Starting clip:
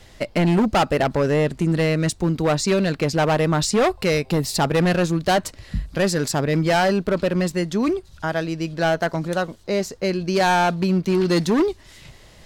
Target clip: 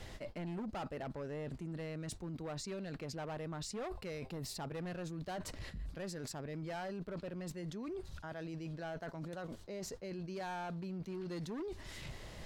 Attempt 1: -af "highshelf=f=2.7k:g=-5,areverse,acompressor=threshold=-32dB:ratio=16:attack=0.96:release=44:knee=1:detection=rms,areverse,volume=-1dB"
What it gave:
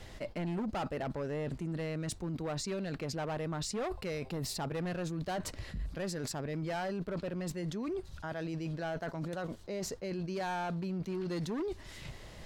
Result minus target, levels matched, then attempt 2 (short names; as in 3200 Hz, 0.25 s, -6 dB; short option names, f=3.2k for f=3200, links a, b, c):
compressor: peak gain reduction -6 dB
-af "highshelf=f=2.7k:g=-5,areverse,acompressor=threshold=-38.5dB:ratio=16:attack=0.96:release=44:knee=1:detection=rms,areverse,volume=-1dB"